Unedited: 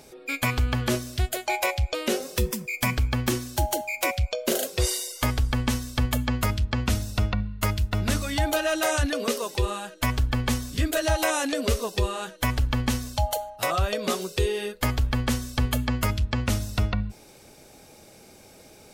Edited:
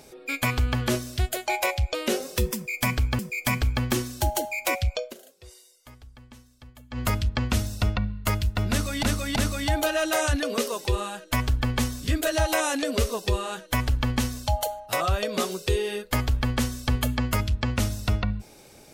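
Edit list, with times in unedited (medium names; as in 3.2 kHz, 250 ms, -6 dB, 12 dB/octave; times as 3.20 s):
2.55–3.19 s: loop, 2 plays
4.36–6.40 s: dip -24 dB, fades 0.14 s
8.06–8.39 s: loop, 3 plays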